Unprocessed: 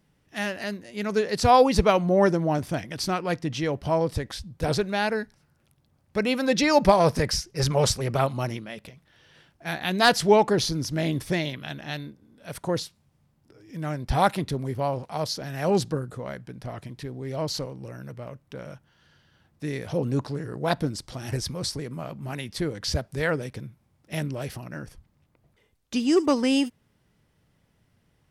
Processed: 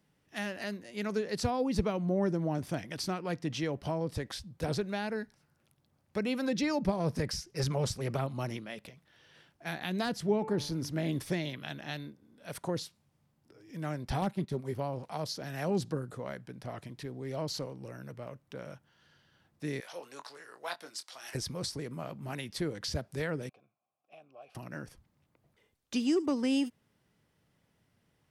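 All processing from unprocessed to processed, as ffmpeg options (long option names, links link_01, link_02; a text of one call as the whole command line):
ffmpeg -i in.wav -filter_complex "[0:a]asettb=1/sr,asplit=3[link_01][link_02][link_03];[link_01]atrim=end=10.204[link_04];[link_02]atrim=start=10.2:end=11.09,asetpts=PTS-STARTPTS,afade=type=in:duration=0.004:curve=qsin,afade=type=out:start_time=0.886:duration=0.004:curve=qsin,equalizer=frequency=5900:width_type=o:width=1.8:gain=-5,bandreject=frequency=145.8:width_type=h:width=4,bandreject=frequency=291.6:width_type=h:width=4,bandreject=frequency=437.4:width_type=h:width=4,bandreject=frequency=583.2:width_type=h:width=4,bandreject=frequency=729:width_type=h:width=4,bandreject=frequency=874.8:width_type=h:width=4,bandreject=frequency=1020.6:width_type=h:width=4,bandreject=frequency=1166.4:width_type=h:width=4,bandreject=frequency=1312.2:width_type=h:width=4,bandreject=frequency=1458:width_type=h:width=4,bandreject=frequency=1603.8:width_type=h:width=4,bandreject=frequency=1749.6:width_type=h:width=4,bandreject=frequency=1895.4:width_type=h:width=4,bandreject=frequency=2041.2:width_type=h:width=4,bandreject=frequency=2187:width_type=h:width=4,bandreject=frequency=2332.8:width_type=h:width=4,bandreject=frequency=2478.6:width_type=h:width=4,bandreject=frequency=2624.4:width_type=h:width=4,bandreject=frequency=2770.2:width_type=h:width=4[link_05];[link_03]atrim=start=11.086[link_06];[link_04][link_05]acrossfade=duration=0.004:curve1=hsin:curve2=qsin[link_07];[link_07][link_06]acrossfade=duration=0.004:curve1=qsin:curve2=hsin,asettb=1/sr,asplit=3[link_08][link_09][link_10];[link_08]atrim=end=14.214[link_11];[link_09]atrim=start=14.21:end=14.73,asetpts=PTS-STARTPTS,afade=type=in:duration=0.004:curve=qsin,afade=type=out:start_time=0.516:duration=0.004:curve=qsin,aecho=1:1:5.2:0.4,atrim=end_sample=22932,agate=range=-10dB:threshold=-32dB:ratio=16:release=100:detection=peak,aeval=exprs='0.355*(abs(mod(val(0)/0.355+3,4)-2)-1)':channel_layout=same[link_12];[link_10]atrim=start=14.726[link_13];[link_11][link_12]acrossfade=duration=0.004:curve1=hsin:curve2=qsin[link_14];[link_14][link_13]acrossfade=duration=0.004:curve1=qsin:curve2=hsin,asettb=1/sr,asplit=3[link_15][link_16][link_17];[link_15]atrim=end=19.804[link_18];[link_16]atrim=start=19.8:end=21.35,asetpts=PTS-STARTPTS,afade=type=in:duration=0.004:curve=qsin,afade=type=out:start_time=1.546:duration=0.004:curve=qsin,highpass=1000,asplit=2[link_19][link_20];[link_20]adelay=23,volume=-10dB[link_21];[link_19][link_21]amix=inputs=2:normalize=0,atrim=end_sample=68355[link_22];[link_17]atrim=start=21.346[link_23];[link_18][link_22]acrossfade=duration=0.004:curve1=hsin:curve2=qsin[link_24];[link_24][link_23]acrossfade=duration=0.004:curve1=qsin:curve2=hsin,asettb=1/sr,asplit=3[link_25][link_26][link_27];[link_25]atrim=end=23.494[link_28];[link_26]atrim=start=23.49:end=24.55,asetpts=PTS-STARTPTS,afade=type=in:duration=0.004:curve=qsin,afade=type=out:start_time=1.056:duration=0.004:curve=qsin,acompressor=threshold=-31dB:ratio=6:attack=3.2:release=140:knee=1:detection=peak,asplit=3[link_29][link_30][link_31];[link_29]bandpass=frequency=730:width_type=q:width=8,volume=0dB[link_32];[link_30]bandpass=frequency=1090:width_type=q:width=8,volume=-6dB[link_33];[link_31]bandpass=frequency=2440:width_type=q:width=8,volume=-9dB[link_34];[link_32][link_33][link_34]amix=inputs=3:normalize=0[link_35];[link_27]atrim=start=24.546[link_36];[link_28][link_35]acrossfade=duration=0.004:curve1=hsin:curve2=qsin[link_37];[link_37][link_36]acrossfade=duration=0.004:curve1=qsin:curve2=hsin,lowshelf=frequency=75:gain=-11.5,acrossover=split=330[link_38][link_39];[link_39]acompressor=threshold=-30dB:ratio=6[link_40];[link_38][link_40]amix=inputs=2:normalize=0,volume=-4dB" out.wav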